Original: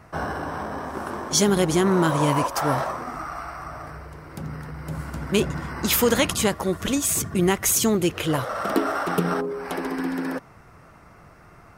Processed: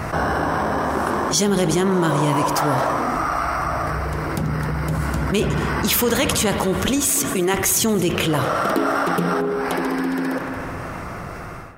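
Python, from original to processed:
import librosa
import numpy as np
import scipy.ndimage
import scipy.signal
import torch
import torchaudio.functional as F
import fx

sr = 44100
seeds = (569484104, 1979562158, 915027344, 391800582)

y = fx.fade_out_tail(x, sr, length_s=3.38)
y = fx.highpass(y, sr, hz=290.0, slope=12, at=(7.1, 7.54))
y = y + 10.0 ** (-22.5 / 20.0) * np.pad(y, (int(227 * sr / 1000.0), 0))[:len(y)]
y = fx.rev_spring(y, sr, rt60_s=2.0, pass_ms=(54,), chirp_ms=40, drr_db=13.0)
y = fx.env_flatten(y, sr, amount_pct=70)
y = F.gain(torch.from_numpy(y), -1.0).numpy()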